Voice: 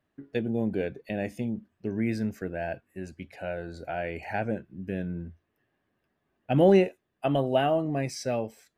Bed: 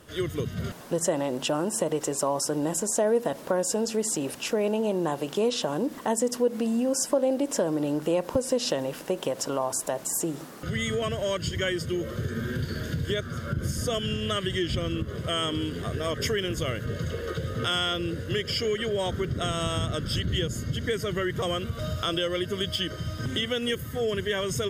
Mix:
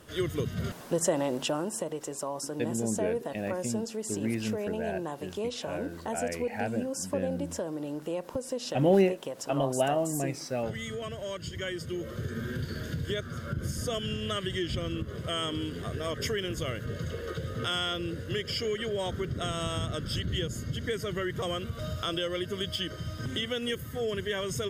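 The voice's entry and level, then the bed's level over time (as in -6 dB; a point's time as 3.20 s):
2.25 s, -3.0 dB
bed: 1.32 s -1 dB
1.94 s -8.5 dB
11.43 s -8.5 dB
12.29 s -4 dB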